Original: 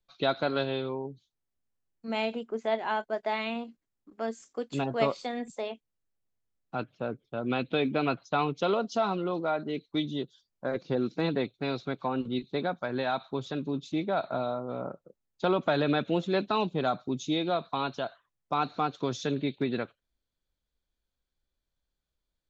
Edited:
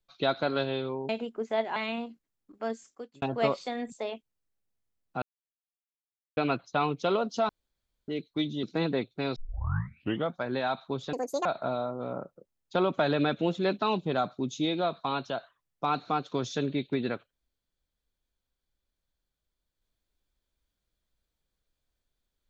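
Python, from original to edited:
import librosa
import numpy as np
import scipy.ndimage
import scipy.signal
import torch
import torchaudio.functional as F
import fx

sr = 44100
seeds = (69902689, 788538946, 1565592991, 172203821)

y = fx.edit(x, sr, fx.cut(start_s=1.09, length_s=1.14),
    fx.cut(start_s=2.9, length_s=0.44),
    fx.fade_out_span(start_s=4.29, length_s=0.51),
    fx.silence(start_s=6.8, length_s=1.15),
    fx.room_tone_fill(start_s=9.07, length_s=0.59),
    fx.cut(start_s=10.21, length_s=0.85),
    fx.tape_start(start_s=11.79, length_s=0.99),
    fx.speed_span(start_s=13.56, length_s=0.58, speed=1.79), tone=tone)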